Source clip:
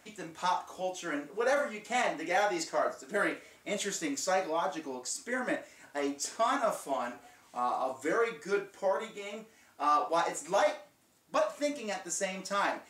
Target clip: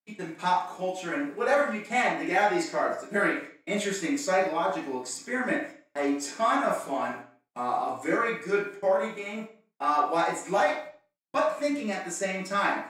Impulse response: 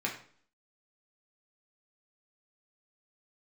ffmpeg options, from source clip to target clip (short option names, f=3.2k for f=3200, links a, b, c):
-filter_complex "[0:a]agate=range=-44dB:threshold=-47dB:ratio=16:detection=peak[a];[1:a]atrim=start_sample=2205,afade=t=out:st=0.35:d=0.01,atrim=end_sample=15876[b];[a][b]afir=irnorm=-1:irlink=0"